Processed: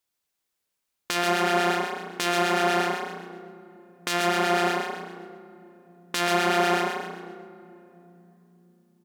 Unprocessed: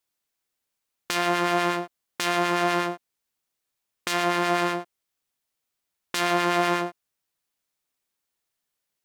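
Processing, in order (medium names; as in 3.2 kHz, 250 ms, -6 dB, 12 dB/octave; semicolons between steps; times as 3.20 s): de-hum 80.64 Hz, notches 35; frequency-shifting echo 132 ms, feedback 42%, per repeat +30 Hz, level -5.5 dB; on a send at -17 dB: reverberation RT60 3.5 s, pre-delay 77 ms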